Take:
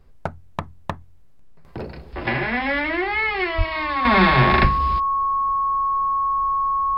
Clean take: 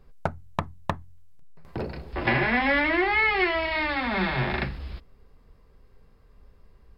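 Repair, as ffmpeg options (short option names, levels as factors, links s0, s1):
-filter_complex "[0:a]bandreject=f=1100:w=30,asplit=3[s0][s1][s2];[s0]afade=t=out:st=3.57:d=0.02[s3];[s1]highpass=f=140:w=0.5412,highpass=f=140:w=1.3066,afade=t=in:st=3.57:d=0.02,afade=t=out:st=3.69:d=0.02[s4];[s2]afade=t=in:st=3.69:d=0.02[s5];[s3][s4][s5]amix=inputs=3:normalize=0,asplit=3[s6][s7][s8];[s6]afade=t=out:st=4.61:d=0.02[s9];[s7]highpass=f=140:w=0.5412,highpass=f=140:w=1.3066,afade=t=in:st=4.61:d=0.02,afade=t=out:st=4.73:d=0.02[s10];[s8]afade=t=in:st=4.73:d=0.02[s11];[s9][s10][s11]amix=inputs=3:normalize=0,agate=range=0.0891:threshold=0.0158,asetnsamples=n=441:p=0,asendcmd='4.05 volume volume -10dB',volume=1"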